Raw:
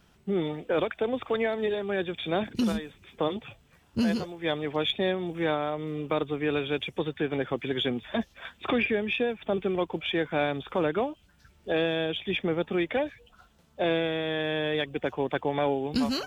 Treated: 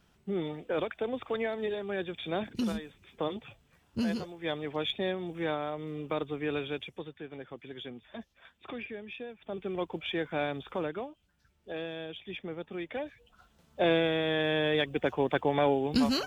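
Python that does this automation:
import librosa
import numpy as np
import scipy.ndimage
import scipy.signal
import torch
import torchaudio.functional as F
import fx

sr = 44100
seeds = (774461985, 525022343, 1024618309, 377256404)

y = fx.gain(x, sr, db=fx.line((6.64, -5.0), (7.2, -14.5), (9.3, -14.5), (9.83, -5.0), (10.69, -5.0), (11.09, -11.5), (12.73, -11.5), (13.82, 0.5)))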